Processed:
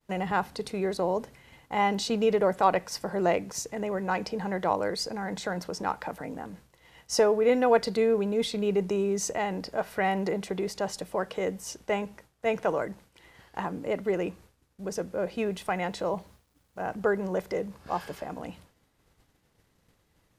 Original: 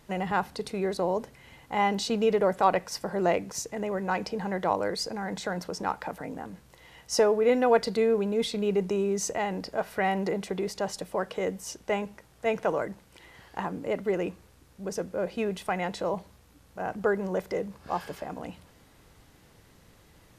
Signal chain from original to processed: expander -48 dBFS; 15.40–16.95 s: word length cut 12-bit, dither none

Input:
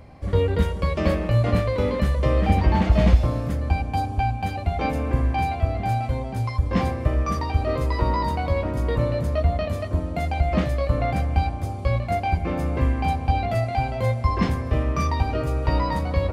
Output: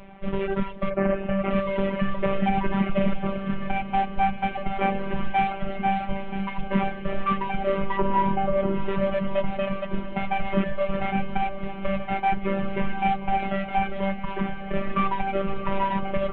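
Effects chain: CVSD coder 16 kbps; 0.89–1.49 s: low-pass 2 kHz -> 3 kHz 24 dB/octave; reverb removal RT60 0.98 s; 7.97–8.75 s: tilt shelf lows +6.5 dB, about 1.3 kHz; peak limiter -16 dBFS, peak gain reduction 12.5 dB; 14.20–14.74 s: compression, threshold -26 dBFS, peak gain reduction 6 dB; robot voice 195 Hz; echo that smears into a reverb 713 ms, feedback 70%, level -14.5 dB; trim +5 dB

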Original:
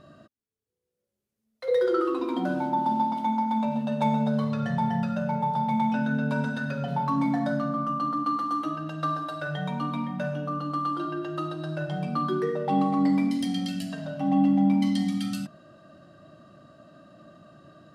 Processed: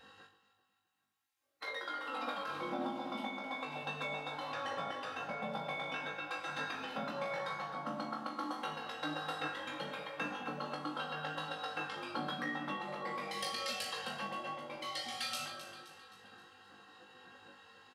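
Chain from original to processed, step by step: peak limiter -21.5 dBFS, peak gain reduction 9.5 dB; high-pass 89 Hz; tone controls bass -14 dB, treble -7 dB; echo whose repeats swap between lows and highs 131 ms, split 930 Hz, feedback 68%, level -9 dB; compression, threshold -30 dBFS, peak gain reduction 5 dB; spectral gate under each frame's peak -15 dB weak; comb 3.7 ms, depth 62%; on a send: flutter echo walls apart 3.4 m, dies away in 0.28 s; on the sum: trim +4 dB

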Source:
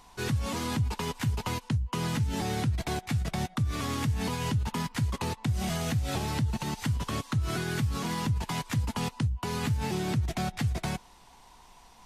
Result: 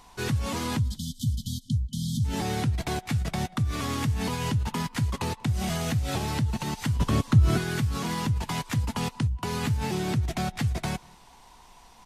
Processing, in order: 0.80–2.25 s: spectral selection erased 270–3000 Hz; 6.99–7.58 s: bass shelf 500 Hz +9 dB; echo from a far wall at 32 m, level -26 dB; trim +2 dB

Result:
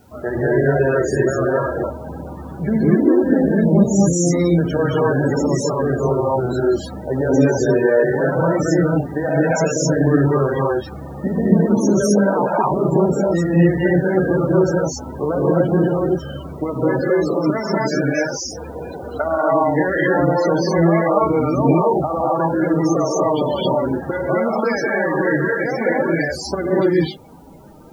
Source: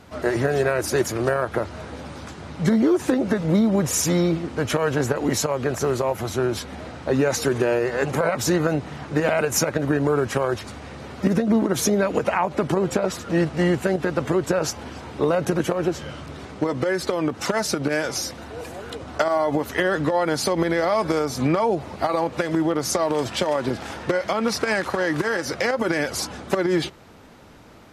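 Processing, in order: gated-style reverb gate 290 ms rising, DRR -5.5 dB; loudest bins only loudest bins 32; word length cut 10-bit, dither triangular; trim -1 dB

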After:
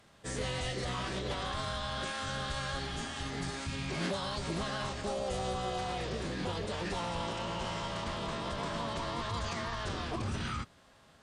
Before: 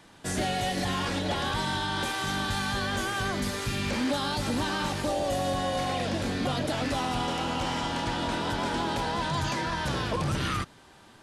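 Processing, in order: formant-preserving pitch shift -6.5 st; spectral replace 2.81–3.50 s, 480–2000 Hz after; trim -6 dB

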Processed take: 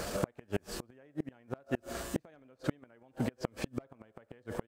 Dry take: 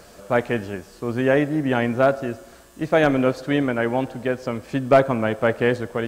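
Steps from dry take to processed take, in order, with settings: compression 2.5:1, threshold -36 dBFS, peak gain reduction 17 dB; inverted gate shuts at -25 dBFS, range -35 dB; tempo 1.3×; trim +8.5 dB

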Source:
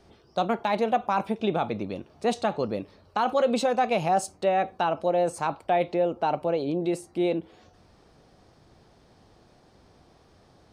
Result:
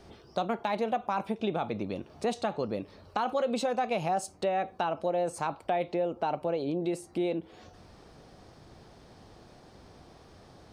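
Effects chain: compression 2:1, threshold -38 dBFS, peak gain reduction 11 dB; trim +4 dB

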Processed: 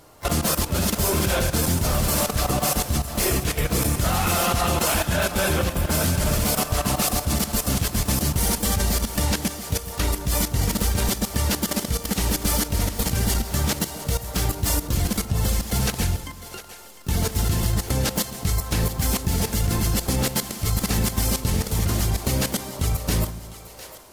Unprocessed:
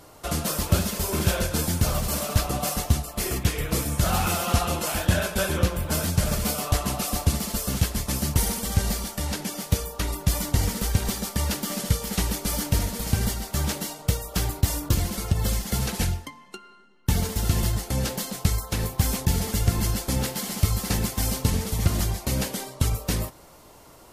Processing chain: level held to a coarse grid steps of 15 dB; two-band feedback delay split 390 Hz, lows 144 ms, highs 704 ms, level -13.5 dB; harmony voices +7 st -12 dB; trim +8.5 dB

